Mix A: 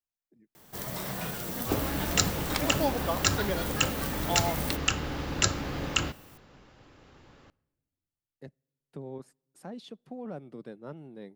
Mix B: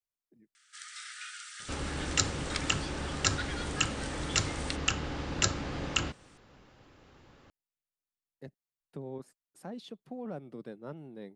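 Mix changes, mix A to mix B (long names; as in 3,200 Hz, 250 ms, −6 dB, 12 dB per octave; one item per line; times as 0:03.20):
first sound: add linear-phase brick-wall band-pass 1,200–9,500 Hz
reverb: off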